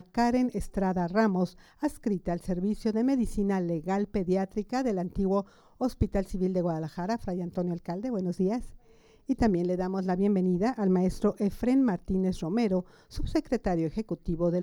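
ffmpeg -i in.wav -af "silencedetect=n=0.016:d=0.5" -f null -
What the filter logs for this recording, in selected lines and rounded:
silence_start: 8.66
silence_end: 9.29 | silence_duration: 0.63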